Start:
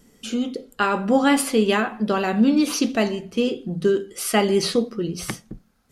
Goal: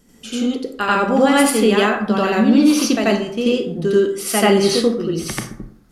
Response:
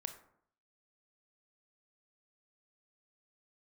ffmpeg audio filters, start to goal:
-filter_complex "[0:a]asplit=2[link_01][link_02];[1:a]atrim=start_sample=2205,adelay=87[link_03];[link_02][link_03]afir=irnorm=-1:irlink=0,volume=7.5dB[link_04];[link_01][link_04]amix=inputs=2:normalize=0,volume=-1dB"

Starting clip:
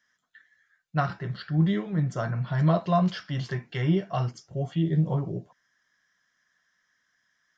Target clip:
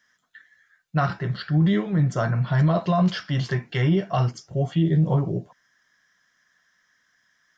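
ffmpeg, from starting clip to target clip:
ffmpeg -i in.wav -af "alimiter=limit=-19dB:level=0:latency=1:release=11,volume=6dB" out.wav

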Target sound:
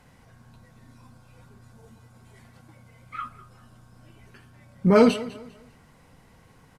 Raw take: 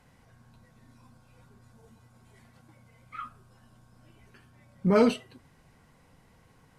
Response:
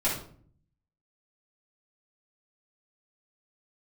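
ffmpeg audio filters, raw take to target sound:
-af "aecho=1:1:200|400|600:0.126|0.039|0.0121,volume=5dB"

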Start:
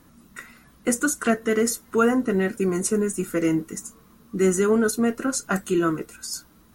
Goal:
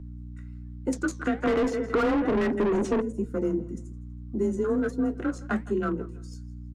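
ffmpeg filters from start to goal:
ffmpeg -i in.wav -filter_complex "[0:a]afwtdn=0.0316,bass=frequency=250:gain=6,treble=frequency=4000:gain=7,aecho=1:1:163|326:0.106|0.0318,adynamicsmooth=sensitivity=4.5:basefreq=5000,flanger=delay=4.4:depth=8.5:regen=-70:speed=1.2:shape=sinusoidal,afreqshift=25,asplit=3[link_01][link_02][link_03];[link_01]afade=type=out:start_time=1.42:duration=0.02[link_04];[link_02]asplit=2[link_05][link_06];[link_06]highpass=frequency=720:poles=1,volume=32dB,asoftclip=type=tanh:threshold=-8.5dB[link_07];[link_05][link_07]amix=inputs=2:normalize=0,lowpass=frequency=1200:poles=1,volume=-6dB,afade=type=in:start_time=1.42:duration=0.02,afade=type=out:start_time=3:duration=0.02[link_08];[link_03]afade=type=in:start_time=3:duration=0.02[link_09];[link_04][link_08][link_09]amix=inputs=3:normalize=0,aeval=exprs='val(0)+0.0126*(sin(2*PI*60*n/s)+sin(2*PI*2*60*n/s)/2+sin(2*PI*3*60*n/s)/3+sin(2*PI*4*60*n/s)/4+sin(2*PI*5*60*n/s)/5)':channel_layout=same,acrossover=split=86|1900|6700[link_10][link_11][link_12][link_13];[link_10]acompressor=threshold=-39dB:ratio=4[link_14];[link_11]acompressor=threshold=-23dB:ratio=4[link_15];[link_12]acompressor=threshold=-41dB:ratio=4[link_16];[link_13]acompressor=threshold=-59dB:ratio=4[link_17];[link_14][link_15][link_16][link_17]amix=inputs=4:normalize=0" out.wav

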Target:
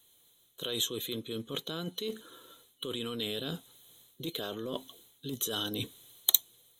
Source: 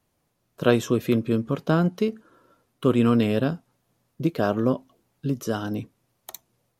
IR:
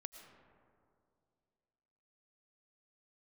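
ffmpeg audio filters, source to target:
-af "superequalizer=6b=1.58:7b=2.24:13b=3.98:14b=0.282,dynaudnorm=framelen=150:gausssize=9:maxgain=12.5dB,alimiter=limit=-10.5dB:level=0:latency=1:release=12,areverse,acompressor=threshold=-28dB:ratio=12,areverse,crystalizer=i=9.5:c=0,volume=-7.5dB"

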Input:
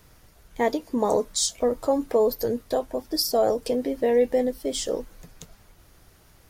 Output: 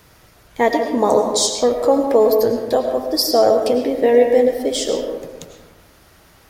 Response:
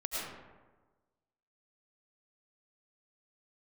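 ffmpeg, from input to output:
-filter_complex "[0:a]highpass=frequency=68:poles=1,lowshelf=frequency=420:gain=-3.5,asplit=2[link_01][link_02];[1:a]atrim=start_sample=2205,lowpass=6100[link_03];[link_02][link_03]afir=irnorm=-1:irlink=0,volume=-5dB[link_04];[link_01][link_04]amix=inputs=2:normalize=0,volume=5.5dB"

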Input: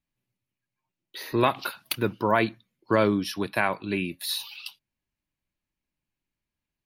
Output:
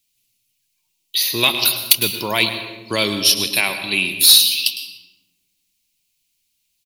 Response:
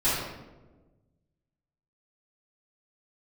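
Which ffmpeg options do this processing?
-filter_complex "[0:a]aexciter=amount=13:drive=4.3:freq=2400,asplit=2[link_01][link_02];[1:a]atrim=start_sample=2205,adelay=116[link_03];[link_02][link_03]afir=irnorm=-1:irlink=0,volume=-23dB[link_04];[link_01][link_04]amix=inputs=2:normalize=0,apsyclip=-3dB,asplit=2[link_05][link_06];[link_06]aecho=0:1:106:0.188[link_07];[link_05][link_07]amix=inputs=2:normalize=0,asoftclip=type=tanh:threshold=-2dB,volume=2dB"

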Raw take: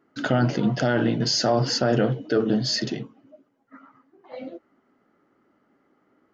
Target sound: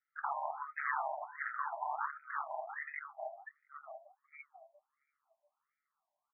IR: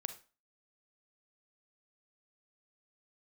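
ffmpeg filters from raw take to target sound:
-filter_complex "[0:a]asplit=2[link_01][link_02];[link_02]adelay=686,lowpass=frequency=1100:poles=1,volume=-8dB,asplit=2[link_03][link_04];[link_04]adelay=686,lowpass=frequency=1100:poles=1,volume=0.53,asplit=2[link_05][link_06];[link_06]adelay=686,lowpass=frequency=1100:poles=1,volume=0.53,asplit=2[link_07][link_08];[link_08]adelay=686,lowpass=frequency=1100:poles=1,volume=0.53,asplit=2[link_09][link_10];[link_10]adelay=686,lowpass=frequency=1100:poles=1,volume=0.53,asplit=2[link_11][link_12];[link_12]adelay=686,lowpass=frequency=1100:poles=1,volume=0.53[link_13];[link_01][link_03][link_05][link_07][link_09][link_11][link_13]amix=inputs=7:normalize=0,afftdn=noise_reduction=21:noise_floor=-40,afftfilt=real='re*lt(hypot(re,im),0.126)':imag='im*lt(hypot(re,im),0.126)':win_size=1024:overlap=0.75,aecho=1:1:1:0.48,acontrast=46,aresample=11025,asoftclip=type=tanh:threshold=-13.5dB,aresample=44100,aeval=exprs='val(0)*sin(2*PI*72*n/s)':channel_layout=same,asplit=2[link_14][link_15];[link_15]asoftclip=type=hard:threshold=-25.5dB,volume=-10dB[link_16];[link_14][link_16]amix=inputs=2:normalize=0,afftfilt=real='re*(1-between(b*sr/4096,270,580))':imag='im*(1-between(b*sr/4096,270,580))':win_size=4096:overlap=0.75,afftfilt=real='re*between(b*sr/1024,750*pow(1800/750,0.5+0.5*sin(2*PI*1.4*pts/sr))/1.41,750*pow(1800/750,0.5+0.5*sin(2*PI*1.4*pts/sr))*1.41)':imag='im*between(b*sr/1024,750*pow(1800/750,0.5+0.5*sin(2*PI*1.4*pts/sr))/1.41,750*pow(1800/750,0.5+0.5*sin(2*PI*1.4*pts/sr))*1.41)':win_size=1024:overlap=0.75,volume=-2dB"

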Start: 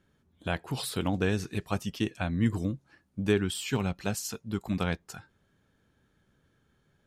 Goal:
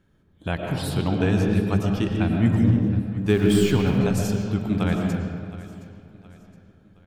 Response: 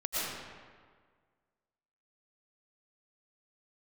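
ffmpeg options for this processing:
-filter_complex "[0:a]asettb=1/sr,asplit=3[link_01][link_02][link_03];[link_01]atrim=end=3.294[link_04];[link_02]atrim=start=3.29:end=3.98,asetpts=PTS-STARTPTS,afade=type=in:duration=0.004:curve=qsin,afade=type=out:start_time=0.686:duration=0.004:curve=qsin,aeval=exprs='val(0)+0.5*0.0178*sgn(val(0))':channel_layout=same[link_05];[link_03]atrim=start=3.976[link_06];[link_04][link_05]acrossfade=duration=0.004:curve1=hsin:curve2=qsin[link_07];[link_07][link_06]acrossfade=duration=0.004:curve1=qsin:curve2=hsin,aecho=1:1:718|1436|2154:0.126|0.0529|0.0222,asplit=2[link_08][link_09];[1:a]atrim=start_sample=2205,lowpass=4400,lowshelf=frequency=410:gain=12[link_10];[link_09][link_10]afir=irnorm=-1:irlink=0,volume=-8dB[link_11];[link_08][link_11]amix=inputs=2:normalize=0"

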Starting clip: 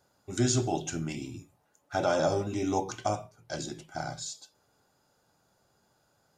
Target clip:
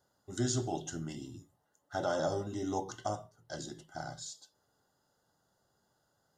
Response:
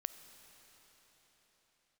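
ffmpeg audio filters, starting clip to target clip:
-af "asuperstop=centerf=2400:order=8:qfactor=3.8,volume=-6dB"

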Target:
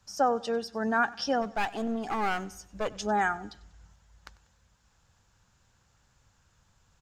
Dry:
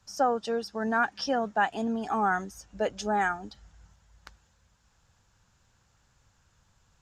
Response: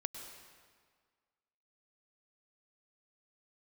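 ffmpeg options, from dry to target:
-filter_complex "[0:a]asplit=3[link_01][link_02][link_03];[link_01]afade=type=out:start_time=1.41:duration=0.02[link_04];[link_02]aeval=exprs='clip(val(0),-1,0.0211)':channel_layout=same,afade=type=in:start_time=1.41:duration=0.02,afade=type=out:start_time=2.88:duration=0.02[link_05];[link_03]afade=type=in:start_time=2.88:duration=0.02[link_06];[link_04][link_05][link_06]amix=inputs=3:normalize=0,aecho=1:1:96|192|288:0.0891|0.0374|0.0157"

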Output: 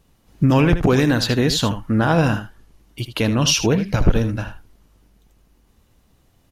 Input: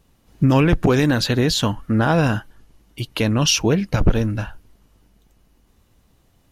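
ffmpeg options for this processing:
ffmpeg -i in.wav -af "aecho=1:1:78:0.282" out.wav

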